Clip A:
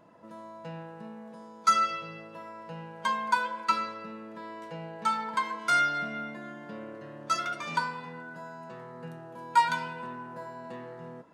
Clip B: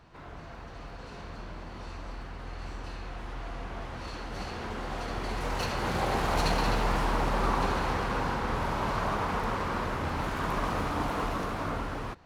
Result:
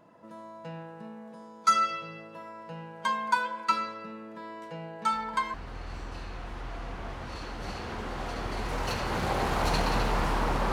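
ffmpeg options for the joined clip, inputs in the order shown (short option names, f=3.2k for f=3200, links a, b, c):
-filter_complex "[1:a]asplit=2[a][b];[0:a]apad=whole_dur=10.72,atrim=end=10.72,atrim=end=5.542[c];[b]atrim=start=2.258:end=7.44[d];[a]atrim=start=1.84:end=2.26,asetpts=PTS-STARTPTS,volume=-15dB,afade=t=in:d=0.004:c=hsin,afade=t=out:st=0.416:d=0.004:c=hsin,adelay=5120[e];[c][d]acrossfade=d=0.004:c1=hsin:c2=hsin[f];[f][e]amix=inputs=2:normalize=0"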